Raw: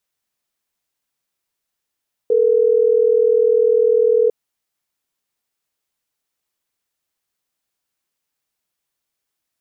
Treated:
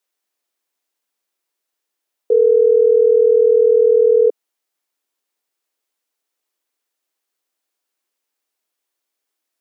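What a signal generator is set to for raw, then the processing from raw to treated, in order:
call progress tone ringback tone, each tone −14 dBFS
high-pass filter 300 Hz 24 dB per octave
low-shelf EQ 400 Hz +6 dB

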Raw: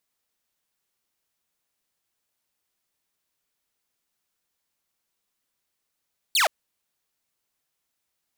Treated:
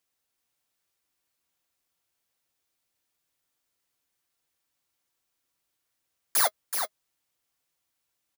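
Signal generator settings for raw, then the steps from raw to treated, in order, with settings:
single falling chirp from 4,700 Hz, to 560 Hz, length 0.12 s saw, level −15 dB
samples in bit-reversed order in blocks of 16 samples
notch comb filter 210 Hz
on a send: single-tap delay 377 ms −6.5 dB

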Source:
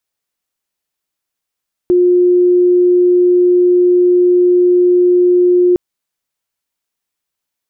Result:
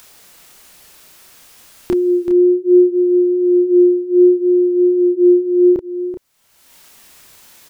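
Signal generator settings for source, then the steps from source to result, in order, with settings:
tone sine 357 Hz −6.5 dBFS 3.86 s
upward compression, threshold −13 dBFS
multi-voice chorus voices 2, 0.62 Hz, delay 29 ms, depth 3.1 ms
single-tap delay 381 ms −9.5 dB

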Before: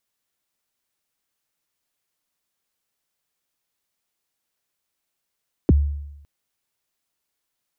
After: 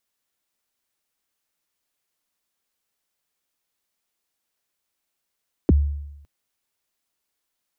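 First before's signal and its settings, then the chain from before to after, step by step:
synth kick length 0.56 s, from 430 Hz, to 72 Hz, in 26 ms, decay 0.90 s, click off, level −9 dB
parametric band 130 Hz −7.5 dB 0.38 octaves

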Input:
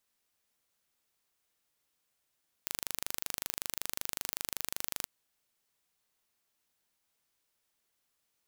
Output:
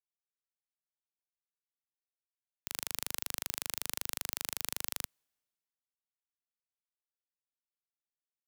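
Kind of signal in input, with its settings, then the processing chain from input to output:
impulse train 25.3 per second, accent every 0, −7 dBFS 2.39 s
multiband upward and downward expander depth 70%

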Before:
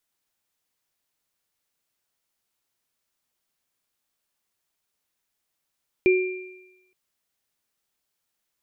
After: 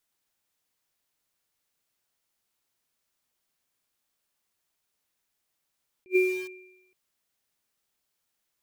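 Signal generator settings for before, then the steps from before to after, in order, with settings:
inharmonic partials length 0.87 s, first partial 370 Hz, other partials 2,380 Hz, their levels −8.5 dB, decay 0.91 s, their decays 1.10 s, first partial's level −13 dB
in parallel at −8.5 dB: bit-depth reduction 6 bits, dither none
on the sum: level that may rise only so fast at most 550 dB per second

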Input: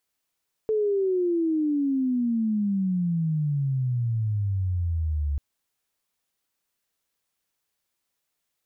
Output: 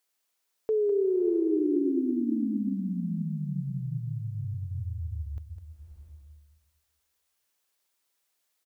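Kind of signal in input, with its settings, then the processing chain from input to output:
glide logarithmic 440 Hz → 70 Hz −20.5 dBFS → −23 dBFS 4.69 s
bass and treble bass −10 dB, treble +2 dB
single-tap delay 204 ms −10 dB
slow-attack reverb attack 680 ms, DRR 5 dB

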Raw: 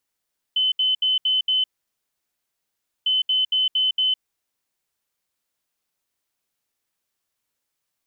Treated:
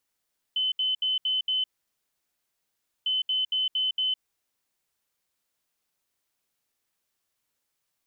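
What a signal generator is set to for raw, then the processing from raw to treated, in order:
beeps in groups sine 3,040 Hz, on 0.16 s, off 0.07 s, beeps 5, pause 1.42 s, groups 2, −17 dBFS
brickwall limiter −23 dBFS

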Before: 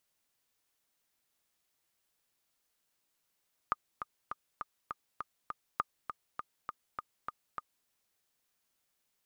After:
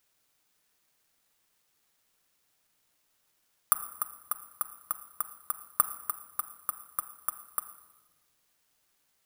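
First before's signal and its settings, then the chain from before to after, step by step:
click track 202 BPM, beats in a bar 7, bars 2, 1,220 Hz, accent 8.5 dB −16 dBFS
parametric band 1,400 Hz +4 dB
rectangular room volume 950 cubic metres, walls mixed, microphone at 0.49 metres
bad sample-rate conversion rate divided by 4×, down none, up zero stuff

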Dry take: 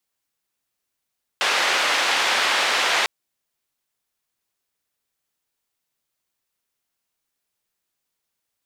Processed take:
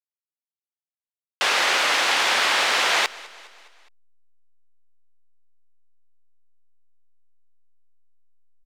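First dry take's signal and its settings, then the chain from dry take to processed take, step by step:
band-limited noise 580–3,100 Hz, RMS −20.5 dBFS 1.65 s
slack as between gear wheels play −47 dBFS
repeating echo 206 ms, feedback 55%, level −21 dB

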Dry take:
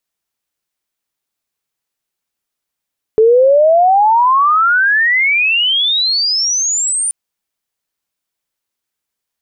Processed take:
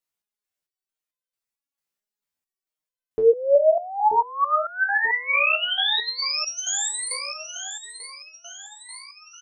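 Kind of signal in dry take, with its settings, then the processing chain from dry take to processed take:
glide logarithmic 430 Hz → 9,300 Hz −5 dBFS → −13.5 dBFS 3.93 s
on a send: repeating echo 934 ms, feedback 51%, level −11 dB
on the sum: step-sequenced resonator 4.5 Hz 63–510 Hz

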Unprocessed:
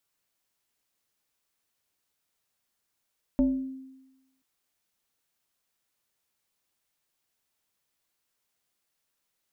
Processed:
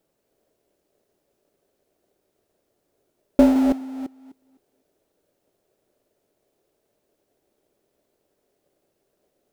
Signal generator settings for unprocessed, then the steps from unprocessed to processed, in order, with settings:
two-operator FM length 1.03 s, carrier 264 Hz, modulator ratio 1.17, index 0.61, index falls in 0.69 s exponential, decay 1.05 s, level −17.5 dB
delay that plays each chunk backwards 254 ms, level −8 dB
in parallel at −4 dB: sample-rate reduction 1,100 Hz, jitter 20%
on the sum: hollow resonant body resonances 410/580 Hz, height 15 dB, ringing for 20 ms

